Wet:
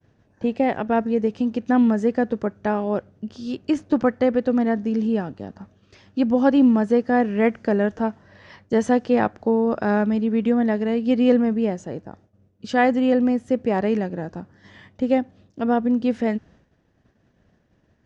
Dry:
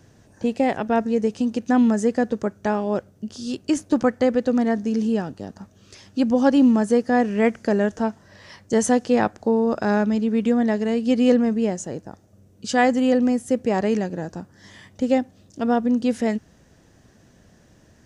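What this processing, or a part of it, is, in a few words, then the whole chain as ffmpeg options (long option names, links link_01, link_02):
hearing-loss simulation: -af "lowpass=3300,agate=range=-33dB:threshold=-46dB:ratio=3:detection=peak"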